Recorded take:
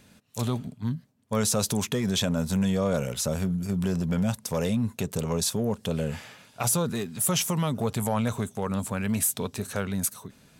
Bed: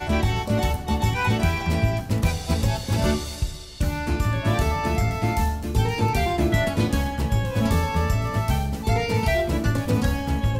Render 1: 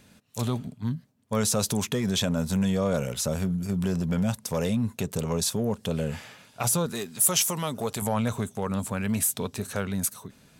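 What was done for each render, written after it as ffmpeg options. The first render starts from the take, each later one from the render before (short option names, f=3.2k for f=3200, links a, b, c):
-filter_complex "[0:a]asettb=1/sr,asplit=3[a][b][c];[a]atrim=end=6.864[d];[b]atrim=start=6.86:end=8.02,asetpts=PTS-STARTPTS,afade=t=in:d=0.004:c=qsin,afade=t=out:st=1.156:d=0.004:c=qsin,bass=f=250:g=-8,treble=f=4k:g=5[e];[c]atrim=start=8.016[f];[d][e]acrossfade=d=0.004:c1=hsin:c2=qsin[g];[g][f]acrossfade=d=0.004:c1=qsin:c2=hsin"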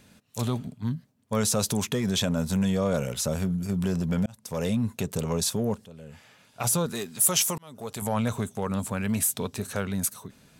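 -filter_complex "[0:a]asplit=4[a][b][c][d];[a]atrim=end=4.26,asetpts=PTS-STARTPTS,afade=t=out:st=4.256:d=0.004:c=hsin[e];[b]atrim=start=4.26:end=5.85,asetpts=PTS-STARTPTS,afade=t=in:d=0.43,afade=t=out:st=1.586:d=0.004:c=hsin:silence=0.11885[f];[c]atrim=start=5.85:end=7.58,asetpts=PTS-STARTPTS,afade=t=in:d=0.85:c=qua:silence=0.11885,afade=t=out:st=1.726:d=0.004:c=hsin[g];[d]atrim=start=7.58,asetpts=PTS-STARTPTS,afade=t=in:d=0.59[h];[e][f][g][h]concat=n=4:v=0:a=1"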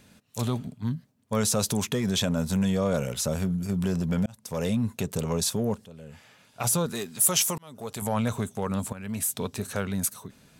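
-filter_complex "[0:a]asplit=2[a][b];[a]atrim=end=8.93,asetpts=PTS-STARTPTS,afade=t=out:st=8.926:d=0.004:c=hsin:silence=0.211349[c];[b]atrim=start=8.93,asetpts=PTS-STARTPTS,afade=t=in:d=0.51:silence=0.211349[d];[c][d]concat=n=2:v=0:a=1"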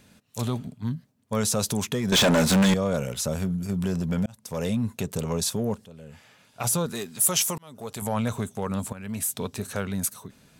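-filter_complex "[0:a]asettb=1/sr,asplit=3[a][b][c];[a]atrim=end=2.124[d];[b]atrim=start=2.12:end=2.74,asetpts=PTS-STARTPTS,afade=t=in:d=0.004:c=qsin,afade=t=out:st=0.616:d=0.004:c=qsin,asplit=2[e][f];[f]highpass=f=720:p=1,volume=29dB,asoftclip=type=tanh:threshold=-11dB[g];[e][g]amix=inputs=2:normalize=0,lowpass=f=5.2k:p=1,volume=-6dB[h];[c]atrim=start=2.736[i];[d][h]acrossfade=d=0.004:c1=hsin:c2=qsin[j];[j][i]acrossfade=d=0.004:c1=qsin:c2=hsin"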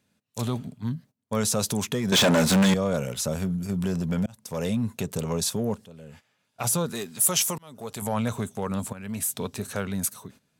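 -af "agate=range=-15dB:threshold=-48dB:ratio=16:detection=peak,highpass=76"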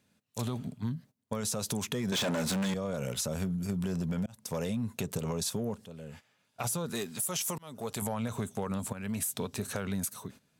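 -af "alimiter=limit=-18.5dB:level=0:latency=1:release=75,acompressor=threshold=-30dB:ratio=4"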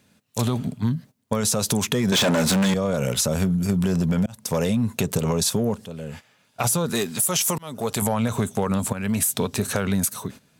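-af "volume=11dB"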